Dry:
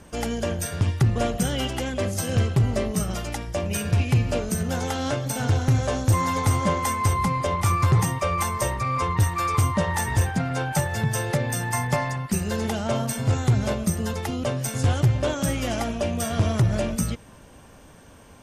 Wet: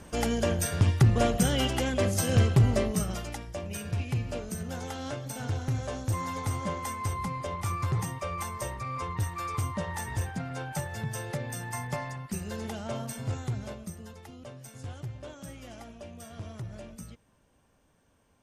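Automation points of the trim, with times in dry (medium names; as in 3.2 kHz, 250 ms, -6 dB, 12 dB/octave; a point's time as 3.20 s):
2.68 s -0.5 dB
3.60 s -10 dB
13.25 s -10 dB
14.15 s -19 dB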